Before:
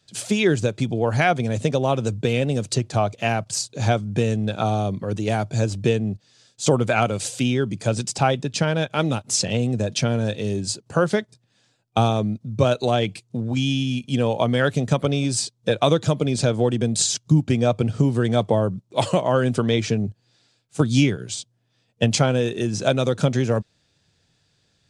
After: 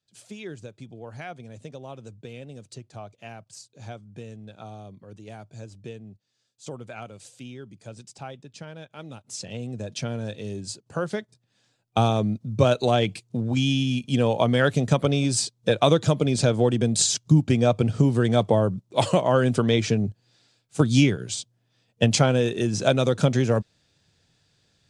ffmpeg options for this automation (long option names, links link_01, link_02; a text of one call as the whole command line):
ffmpeg -i in.wav -af "volume=-0.5dB,afade=type=in:start_time=9.04:duration=1.01:silence=0.298538,afade=type=in:start_time=11.12:duration=1.21:silence=0.398107" out.wav